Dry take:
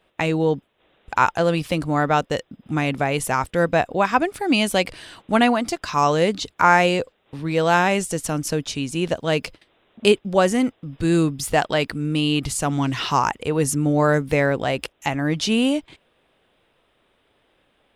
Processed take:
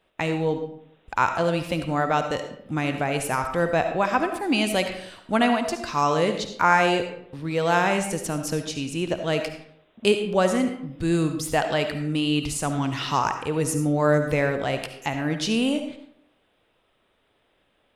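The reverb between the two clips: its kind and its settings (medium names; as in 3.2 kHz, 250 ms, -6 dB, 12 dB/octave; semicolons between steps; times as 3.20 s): algorithmic reverb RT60 0.7 s, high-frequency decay 0.65×, pre-delay 30 ms, DRR 6.5 dB; trim -4 dB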